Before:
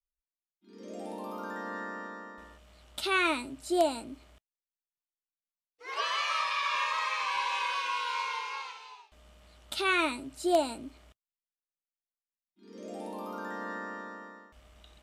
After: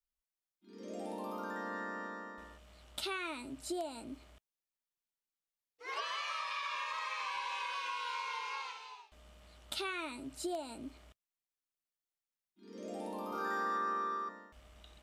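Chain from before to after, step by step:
downward compressor 12 to 1, threshold −34 dBFS, peak gain reduction 15 dB
0:13.29–0:14.29: flutter between parallel walls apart 4.8 metres, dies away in 0.84 s
level −1.5 dB

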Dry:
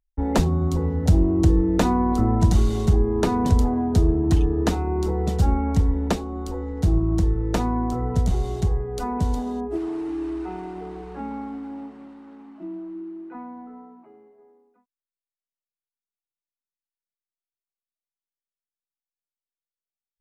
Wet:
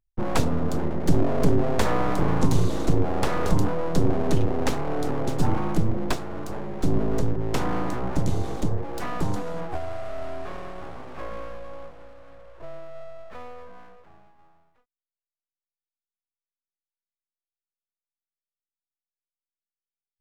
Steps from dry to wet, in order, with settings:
full-wave rectification

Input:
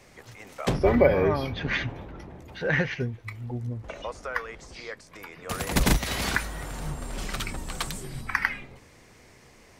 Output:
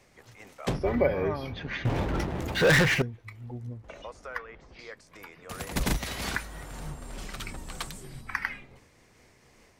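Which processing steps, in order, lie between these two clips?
0:01.85–0:03.02: leveller curve on the samples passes 5
0:04.38–0:04.79: low-pass filter 2,900 Hz 12 dB per octave
amplitude modulation by smooth noise, depth 50%
level −3 dB

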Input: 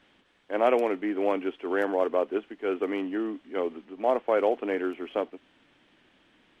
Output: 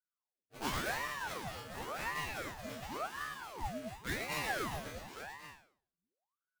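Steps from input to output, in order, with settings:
spectral dynamics exaggerated over time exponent 2
tilt shelving filter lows −5.5 dB
treble cut that deepens with the level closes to 1,900 Hz, closed at −28.5 dBFS
low-shelf EQ 370 Hz +10 dB
low-pass that shuts in the quiet parts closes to 520 Hz, open at −23.5 dBFS
sample-rate reduction 1,900 Hz, jitter 20%
resonators tuned to a chord D3 fifth, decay 0.48 s
loudspeakers that aren't time-aligned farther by 38 metres −5 dB, 78 metres −5 dB, 94 metres −7 dB
ring modulator whose carrier an LFO sweeps 830 Hz, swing 80%, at 0.92 Hz
level +7.5 dB

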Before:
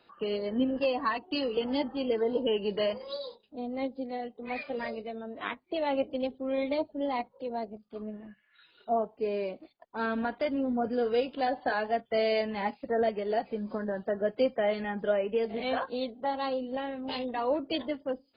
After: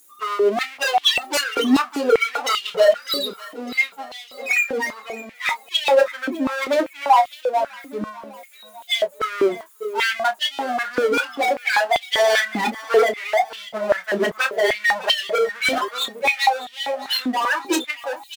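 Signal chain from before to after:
spectral dynamics exaggerated over time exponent 3
parametric band 1,200 Hz −4 dB 1.3 octaves
in parallel at +2 dB: downward compressor, threshold −44 dBFS, peak gain reduction 17 dB
on the sum: sine wavefolder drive 14 dB, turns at −19.5 dBFS
power curve on the samples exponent 0.5
double-tracking delay 28 ms −10 dB
repeating echo 602 ms, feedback 44%, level −15.5 dB
high-pass on a step sequencer 5.1 Hz 290–3,100 Hz

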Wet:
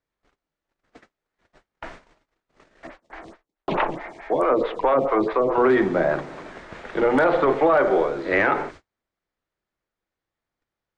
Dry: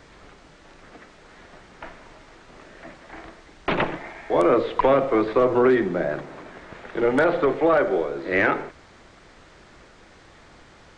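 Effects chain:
mains-hum notches 60/120/180/240/300/360/420 Hz
noise gate −43 dBFS, range −39 dB
dynamic equaliser 940 Hz, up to +6 dB, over −34 dBFS, Q 1.3
brickwall limiter −12 dBFS, peak gain reduction 7.5 dB
0:02.87–0:05.58: phaser with staggered stages 4.6 Hz
level +2.5 dB

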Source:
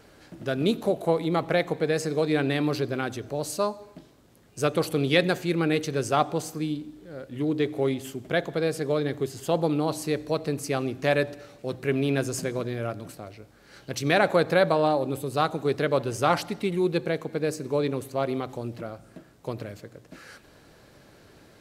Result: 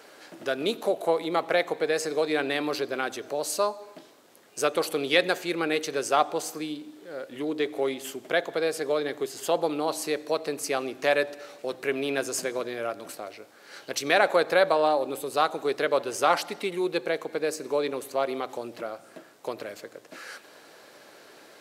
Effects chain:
in parallel at −0.5 dB: downward compressor, threshold −34 dBFS, peak gain reduction 17.5 dB
on the sum: high-pass filter 430 Hz 12 dB per octave

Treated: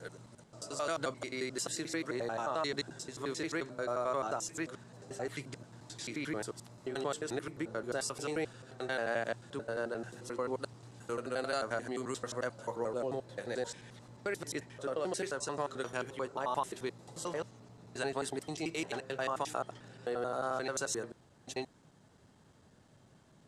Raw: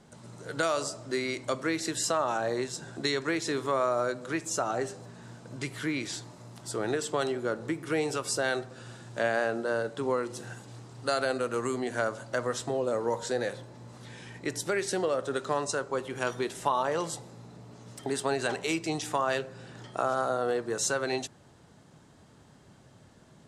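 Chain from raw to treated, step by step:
slices reordered back to front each 88 ms, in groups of 6
level −6.5 dB

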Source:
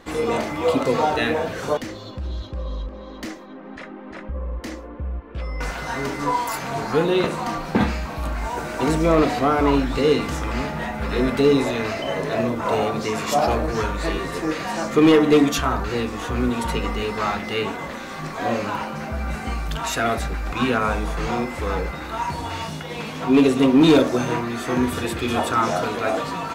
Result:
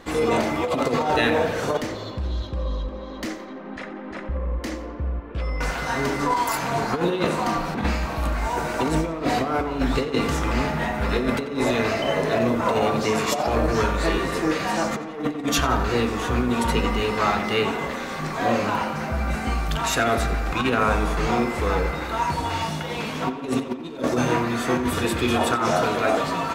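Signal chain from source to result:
compressor whose output falls as the input rises −21 dBFS, ratio −0.5
tape delay 88 ms, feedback 74%, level −11 dB, low-pass 4,000 Hz

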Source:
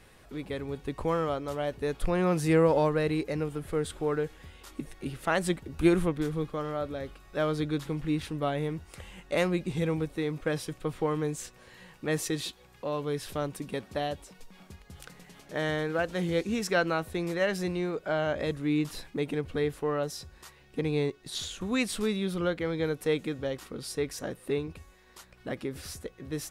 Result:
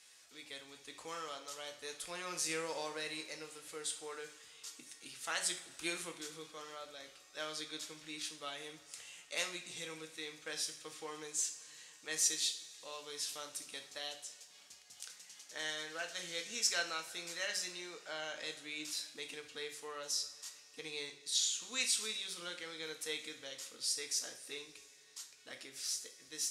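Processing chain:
resonant band-pass 6,300 Hz, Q 1.7
coupled-rooms reverb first 0.45 s, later 3.4 s, from −20 dB, DRR 3.5 dB
level +6.5 dB

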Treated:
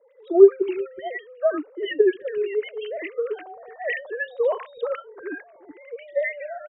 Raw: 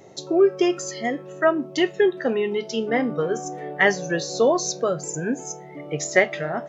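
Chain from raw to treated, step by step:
three sine waves on the formant tracks
three-band delay without the direct sound mids, highs, lows 80/370 ms, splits 230/1,200 Hz

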